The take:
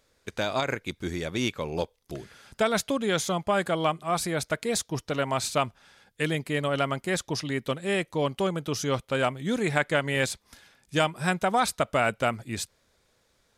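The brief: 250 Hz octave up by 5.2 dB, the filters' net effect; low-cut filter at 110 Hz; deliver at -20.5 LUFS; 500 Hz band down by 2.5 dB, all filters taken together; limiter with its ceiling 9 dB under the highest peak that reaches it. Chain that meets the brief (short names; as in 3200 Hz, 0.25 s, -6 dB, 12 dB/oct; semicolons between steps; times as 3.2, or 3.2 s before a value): HPF 110 Hz; bell 250 Hz +8.5 dB; bell 500 Hz -5.5 dB; gain +8 dB; limiter -8 dBFS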